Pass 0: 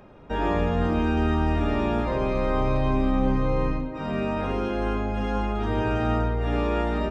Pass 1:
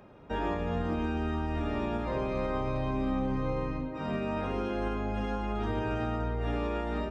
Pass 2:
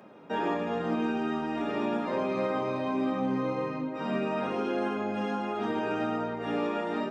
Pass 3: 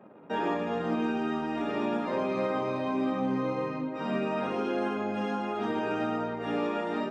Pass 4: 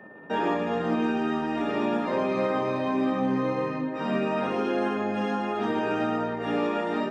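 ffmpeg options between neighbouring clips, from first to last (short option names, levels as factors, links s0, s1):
-af "highpass=42,alimiter=limit=0.119:level=0:latency=1:release=187,volume=0.631"
-af "highpass=f=170:w=0.5412,highpass=f=170:w=1.3066,flanger=delay=8.9:depth=9.6:regen=-48:speed=0.39:shape=triangular,volume=2.24"
-af "anlmdn=0.00158"
-af "aeval=exprs='val(0)+0.00251*sin(2*PI*1800*n/s)':c=same,volume=1.5"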